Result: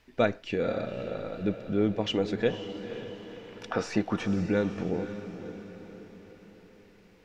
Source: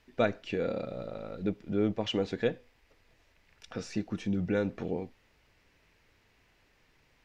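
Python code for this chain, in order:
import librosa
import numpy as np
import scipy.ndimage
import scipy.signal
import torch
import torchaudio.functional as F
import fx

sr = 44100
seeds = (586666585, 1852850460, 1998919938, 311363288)

y = fx.peak_eq(x, sr, hz=940.0, db=14.5, octaves=2.1, at=(2.53, 4.26))
y = fx.echo_diffused(y, sr, ms=514, feedback_pct=50, wet_db=-10.5)
y = y * librosa.db_to_amplitude(2.5)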